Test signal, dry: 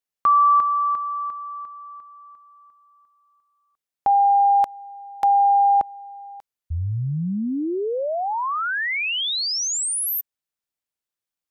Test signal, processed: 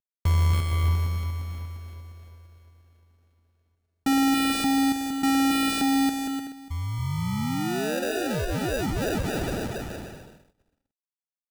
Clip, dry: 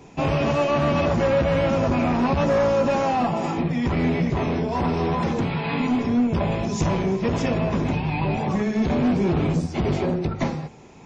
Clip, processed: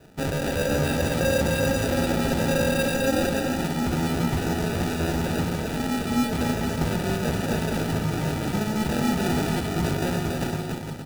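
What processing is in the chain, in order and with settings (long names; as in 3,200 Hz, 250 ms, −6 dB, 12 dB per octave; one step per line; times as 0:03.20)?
variable-slope delta modulation 32 kbit/s
decimation without filtering 41×
bouncing-ball delay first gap 280 ms, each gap 0.65×, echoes 5
level −4.5 dB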